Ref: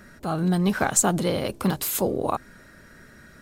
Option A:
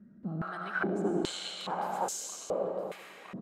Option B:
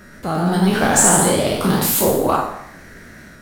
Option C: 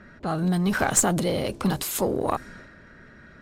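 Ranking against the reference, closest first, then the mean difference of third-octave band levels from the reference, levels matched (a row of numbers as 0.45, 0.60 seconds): C, B, A; 2.5, 5.5, 12.5 decibels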